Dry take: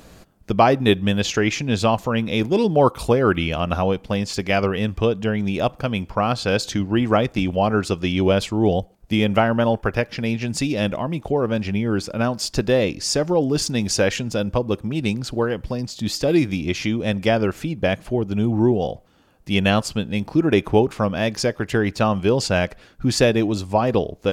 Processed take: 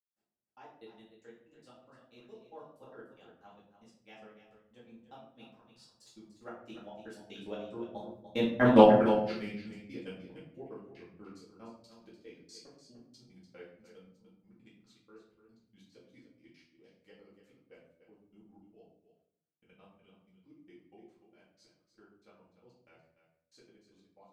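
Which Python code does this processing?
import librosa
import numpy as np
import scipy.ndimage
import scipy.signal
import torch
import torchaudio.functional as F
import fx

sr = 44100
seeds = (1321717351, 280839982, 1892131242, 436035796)

y = fx.doppler_pass(x, sr, speed_mps=32, closest_m=1.8, pass_at_s=8.73)
y = scipy.signal.sosfilt(scipy.signal.butter(2, 210.0, 'highpass', fs=sr, output='sos'), y)
y = fx.step_gate(y, sr, bpm=185, pattern='..x.x..x', floor_db=-60.0, edge_ms=4.5)
y = y + 10.0 ** (-10.5 / 20.0) * np.pad(y, (int(295 * sr / 1000.0), 0))[:len(y)]
y = fx.room_shoebox(y, sr, seeds[0], volume_m3=100.0, walls='mixed', distance_m=2.1)
y = fx.doppler_dist(y, sr, depth_ms=0.14)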